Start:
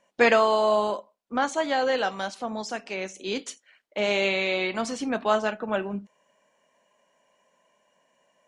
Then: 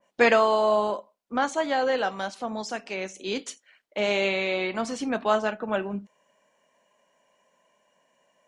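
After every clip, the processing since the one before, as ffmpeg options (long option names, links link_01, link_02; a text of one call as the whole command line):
ffmpeg -i in.wav -af "adynamicequalizer=threshold=0.0178:dfrequency=2200:dqfactor=0.7:tfrequency=2200:tqfactor=0.7:attack=5:release=100:ratio=0.375:range=2.5:mode=cutabove:tftype=highshelf" out.wav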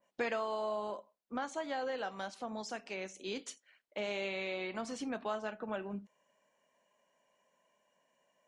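ffmpeg -i in.wav -af "acompressor=threshold=-28dB:ratio=2.5,volume=-8dB" out.wav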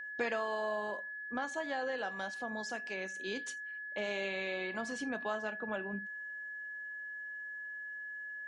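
ffmpeg -i in.wav -af "aeval=exprs='val(0)+0.00891*sin(2*PI*1700*n/s)':channel_layout=same" out.wav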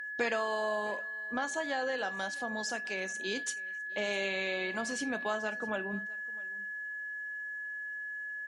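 ffmpeg -i in.wav -af "aemphasis=mode=production:type=cd,aecho=1:1:656:0.0708,volume=3dB" out.wav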